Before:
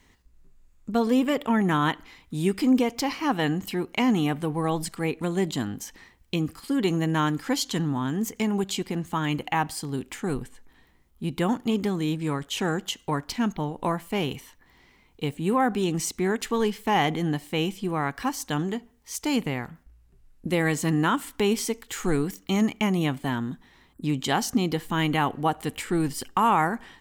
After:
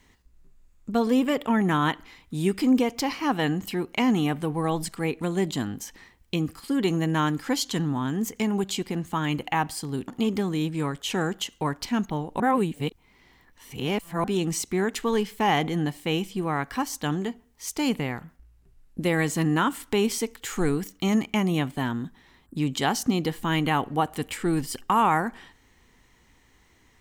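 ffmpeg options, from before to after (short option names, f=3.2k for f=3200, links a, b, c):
-filter_complex "[0:a]asplit=4[a][b][c][d];[a]atrim=end=10.082[e];[b]atrim=start=11.548:end=13.872[f];[c]atrim=start=13.868:end=15.712,asetpts=PTS-STARTPTS,areverse[g];[d]atrim=start=15.708[h];[e][f]acrossfade=d=0.004:c1=hsin:c2=hsin[i];[i][g]acrossfade=d=0.004:c1=hsin:c2=hsin[j];[j][h]acrossfade=d=0.004:c1=hsin:c2=hsin"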